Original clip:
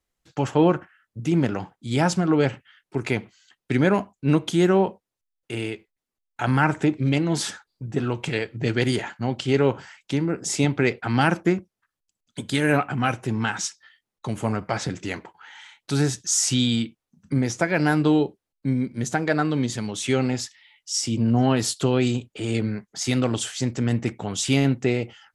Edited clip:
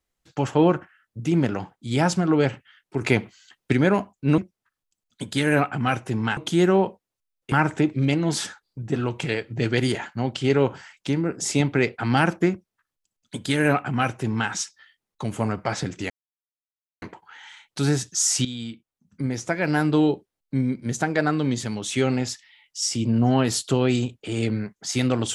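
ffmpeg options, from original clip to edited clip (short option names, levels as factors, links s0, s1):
-filter_complex "[0:a]asplit=8[s0][s1][s2][s3][s4][s5][s6][s7];[s0]atrim=end=3.012[s8];[s1]atrim=start=3.008:end=3.732,asetpts=PTS-STARTPTS,volume=1.68[s9];[s2]atrim=start=3.728:end=4.382[s10];[s3]atrim=start=11.548:end=13.542[s11];[s4]atrim=start=4.378:end=5.532[s12];[s5]atrim=start=6.558:end=15.14,asetpts=PTS-STARTPTS,afade=t=out:st=8.578:d=0.004:c=hsin,apad=pad_dur=0.92[s13];[s6]atrim=start=15.14:end=16.57,asetpts=PTS-STARTPTS,afade=t=in:d=0.004:c=hsin,afade=t=out:st=1.426:d=0.004:c=hsin:silence=0.211349[s14];[s7]atrim=start=16.57,asetpts=PTS-STARTPTS,afade=t=in:d=1.61:silence=0.211349[s15];[s8][s9]acrossfade=d=0.004:c1=hsin:c2=hsin[s16];[s16][s10]acrossfade=d=0.004:c1=hsin:c2=hsin[s17];[s17][s11]acrossfade=d=0.004:c1=hsin:c2=hsin[s18];[s18][s12]acrossfade=d=0.004:c1=hsin:c2=hsin[s19];[s13][s14][s15]concat=n=3:v=0:a=1[s20];[s19][s20]acrossfade=d=0.004:c1=hsin:c2=hsin"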